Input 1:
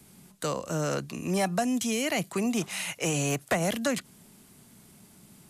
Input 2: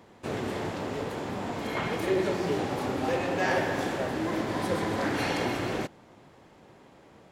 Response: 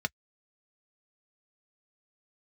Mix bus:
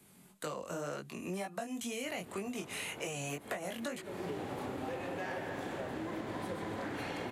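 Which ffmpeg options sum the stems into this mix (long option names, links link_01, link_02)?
-filter_complex "[0:a]bass=frequency=250:gain=-7,treble=frequency=4000:gain=-2,flanger=delay=19.5:depth=3.1:speed=2,volume=-0.5dB,asplit=2[link_01][link_02];[1:a]adelay=1800,volume=-6dB[link_03];[link_02]apad=whole_len=402136[link_04];[link_03][link_04]sidechaincompress=threshold=-44dB:ratio=8:attack=16:release=306[link_05];[link_01][link_05]amix=inputs=2:normalize=0,equalizer=frequency=5300:width=2.1:gain=-5.5,acompressor=threshold=-36dB:ratio=6"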